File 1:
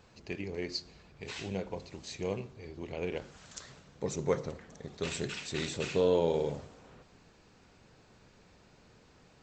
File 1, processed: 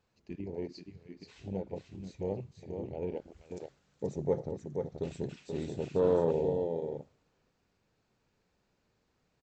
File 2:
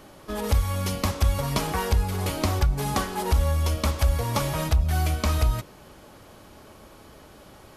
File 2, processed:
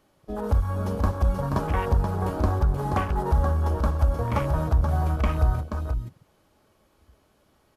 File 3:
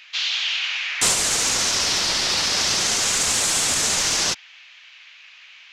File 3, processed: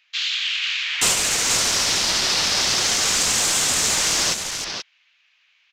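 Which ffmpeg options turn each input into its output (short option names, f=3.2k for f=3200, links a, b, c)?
-af "aecho=1:1:480:0.531,afwtdn=0.0282"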